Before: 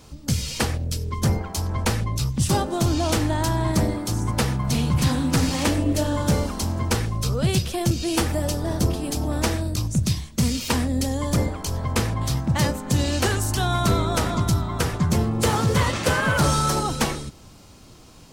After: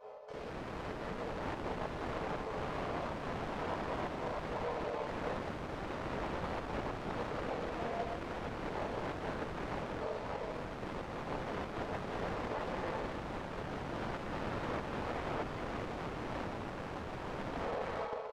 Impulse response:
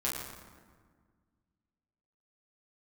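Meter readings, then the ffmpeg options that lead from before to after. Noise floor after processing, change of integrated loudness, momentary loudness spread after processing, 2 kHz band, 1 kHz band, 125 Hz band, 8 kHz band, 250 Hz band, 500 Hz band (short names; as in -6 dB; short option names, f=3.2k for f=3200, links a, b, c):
-43 dBFS, -17.0 dB, 4 LU, -13.5 dB, -11.0 dB, -23.5 dB, -32.5 dB, -18.0 dB, -10.5 dB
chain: -filter_complex "[1:a]atrim=start_sample=2205,asetrate=83790,aresample=44100[a];[0:a][a]afir=irnorm=-1:irlink=0,areverse,acompressor=threshold=-26dB:ratio=16,areverse,afftfilt=real='re*lt(hypot(re,im),0.0891)':imag='im*lt(hypot(re,im),0.0891)':win_size=1024:overlap=0.75,asplit=2[b][c];[c]aecho=0:1:54|203|209|346|417|808:0.708|0.141|0.668|0.316|0.562|0.473[d];[b][d]amix=inputs=2:normalize=0,afftfilt=real='re*between(b*sr/4096,410,9200)':imag='im*between(b*sr/4096,410,9200)':win_size=4096:overlap=0.75,aeval=exprs='(mod(56.2*val(0)+1,2)-1)/56.2':c=same,adynamicsmooth=sensitivity=3.5:basefreq=590,volume=11.5dB"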